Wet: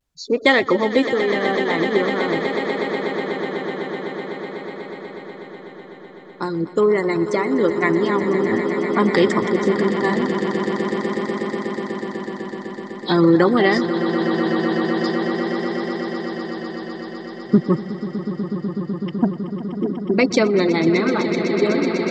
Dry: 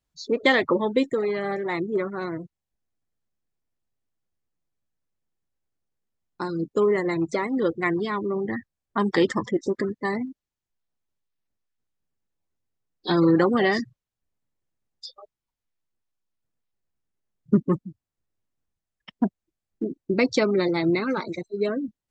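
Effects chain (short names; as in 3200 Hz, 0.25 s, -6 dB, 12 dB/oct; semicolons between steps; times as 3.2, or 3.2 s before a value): swelling echo 0.124 s, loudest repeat 8, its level -12.5 dB; vibrato 0.46 Hz 32 cents; gain +4.5 dB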